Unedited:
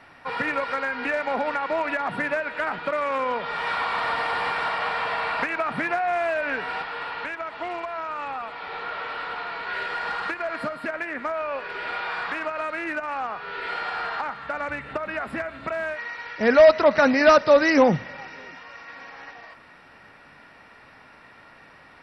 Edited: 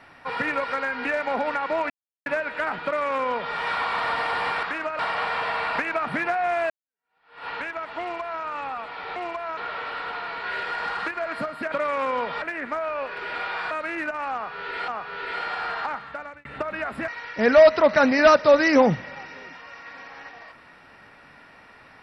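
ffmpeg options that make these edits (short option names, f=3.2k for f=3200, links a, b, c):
-filter_complex "[0:a]asplit=14[a][b][c][d][e][f][g][h][i][j][k][l][m][n];[a]atrim=end=1.9,asetpts=PTS-STARTPTS,afade=t=out:st=1.896:d=0.004:c=hsin[o];[b]atrim=start=1.9:end=2.26,asetpts=PTS-STARTPTS,volume=0[p];[c]atrim=start=2.26:end=4.632,asetpts=PTS-STARTPTS,afade=t=in:d=0.004:c=hsin[q];[d]atrim=start=12.238:end=12.602[r];[e]atrim=start=4.628:end=6.34,asetpts=PTS-STARTPTS,afade=t=out:st=1.708:d=0.004:c=hsin[s];[f]atrim=start=6.34:end=8.802,asetpts=PTS-STARTPTS,afade=t=in:d=0.77:c=exp[t];[g]atrim=start=7.648:end=8.062[u];[h]atrim=start=8.798:end=10.952[v];[i]atrim=start=2.848:end=3.552[w];[j]atrim=start=10.948:end=12.242[x];[k]atrim=start=12.598:end=13.772[y];[l]atrim=start=13.228:end=14.8,asetpts=PTS-STARTPTS,afade=t=out:st=1.072:d=0.5[z];[m]atrim=start=14.8:end=15.432,asetpts=PTS-STARTPTS,afade=t=in:d=0.004:c=hsin[aa];[n]atrim=start=16.098[ab];[o][p][q]concat=n=3:v=0:a=1[ac];[ac][r]acrossfade=d=0.004:c1=hsin:c2=hsin[ad];[s][t]concat=n=2:v=0:a=1[ae];[ad][ae]acrossfade=d=0.004:c1=hsin:c2=hsin[af];[af][u]acrossfade=d=0.004:c1=hsin:c2=hsin[ag];[ag][v]acrossfade=d=0.004:c1=hsin:c2=hsin[ah];[ah][w]acrossfade=d=0.004:c1=hsin:c2=hsin[ai];[ai][x]acrossfade=d=0.004:c1=hsin:c2=hsin[aj];[aj][y]acrossfade=d=0.004:c1=hsin:c2=hsin[ak];[z][aa]concat=n=2:v=0:a=1[al];[ak][al]acrossfade=d=0.004:c1=hsin:c2=hsin[am];[am][ab]acrossfade=d=0.004:c1=hsin:c2=hsin"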